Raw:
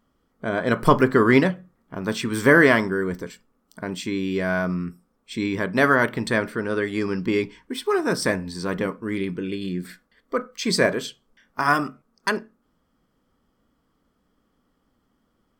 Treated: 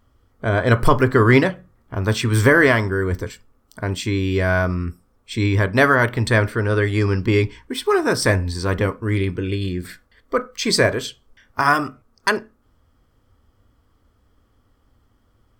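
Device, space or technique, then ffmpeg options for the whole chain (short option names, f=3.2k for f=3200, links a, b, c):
car stereo with a boomy subwoofer: -af "lowshelf=f=130:t=q:w=3:g=8,alimiter=limit=-8dB:level=0:latency=1:release=470,volume=5dB"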